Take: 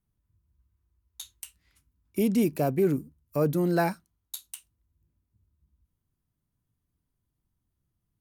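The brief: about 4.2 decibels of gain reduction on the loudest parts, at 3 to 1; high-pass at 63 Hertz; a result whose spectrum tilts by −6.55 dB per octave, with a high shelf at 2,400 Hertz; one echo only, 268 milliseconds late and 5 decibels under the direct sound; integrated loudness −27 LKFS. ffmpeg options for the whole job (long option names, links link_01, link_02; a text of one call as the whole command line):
ffmpeg -i in.wav -af "highpass=63,highshelf=frequency=2400:gain=-6,acompressor=threshold=-25dB:ratio=3,aecho=1:1:268:0.562,volume=3dB" out.wav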